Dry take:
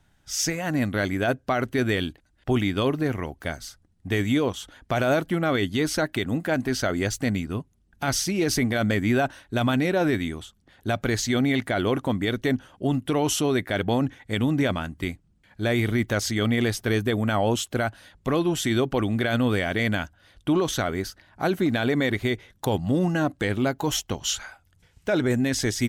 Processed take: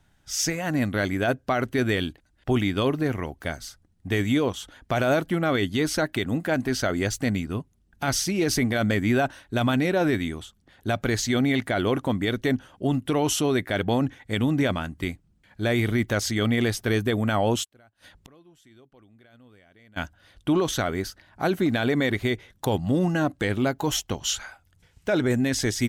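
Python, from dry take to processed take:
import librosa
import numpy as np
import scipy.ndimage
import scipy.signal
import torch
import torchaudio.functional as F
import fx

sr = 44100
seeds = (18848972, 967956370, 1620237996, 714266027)

y = fx.gate_flip(x, sr, shuts_db=-30.0, range_db=-31, at=(17.63, 19.96), fade=0.02)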